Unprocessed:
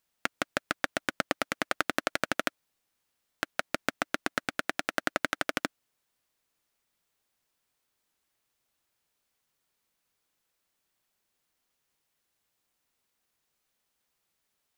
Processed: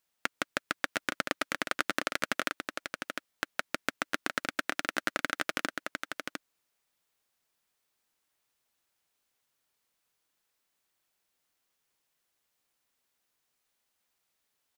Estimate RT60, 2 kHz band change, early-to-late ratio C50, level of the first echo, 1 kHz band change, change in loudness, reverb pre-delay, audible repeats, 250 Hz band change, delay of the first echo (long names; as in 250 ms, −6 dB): no reverb audible, −0.5 dB, no reverb audible, −6.0 dB, −1.5 dB, −2.0 dB, no reverb audible, 1, −2.5 dB, 704 ms